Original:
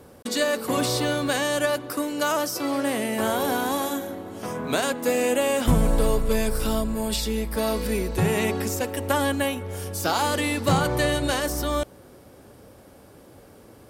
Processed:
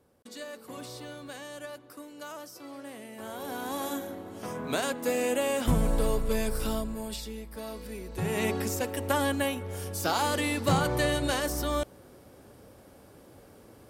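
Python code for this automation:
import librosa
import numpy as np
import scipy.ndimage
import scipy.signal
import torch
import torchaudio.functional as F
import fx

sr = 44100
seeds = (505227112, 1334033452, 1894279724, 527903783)

y = fx.gain(x, sr, db=fx.line((3.16, -18.0), (3.92, -5.5), (6.67, -5.5), (7.45, -14.5), (8.01, -14.5), (8.45, -4.0)))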